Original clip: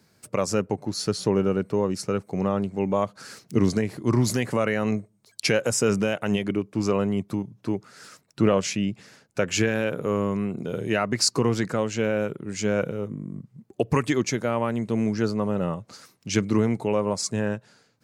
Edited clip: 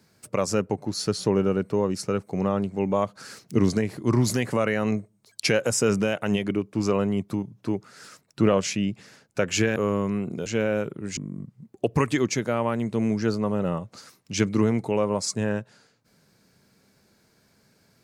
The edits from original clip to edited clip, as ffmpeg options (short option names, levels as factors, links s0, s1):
-filter_complex "[0:a]asplit=4[s0][s1][s2][s3];[s0]atrim=end=9.762[s4];[s1]atrim=start=10.028:end=10.732[s5];[s2]atrim=start=11.898:end=12.612[s6];[s3]atrim=start=13.128[s7];[s4][s5]acrossfade=d=0.004:c1=hsin:c2=hsin[s8];[s8][s6]acrossfade=d=0.004:c1=hsin:c2=hsin[s9];[s9][s7]acrossfade=d=0.004:c1=hsin:c2=hsin"